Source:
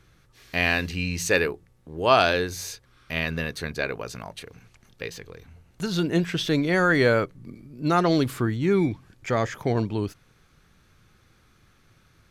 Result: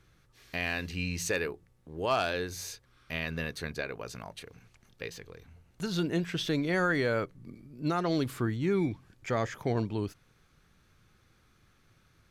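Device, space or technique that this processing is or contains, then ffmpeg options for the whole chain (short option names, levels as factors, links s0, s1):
clipper into limiter: -af "asoftclip=type=hard:threshold=0.355,alimiter=limit=0.211:level=0:latency=1:release=257,volume=0.531"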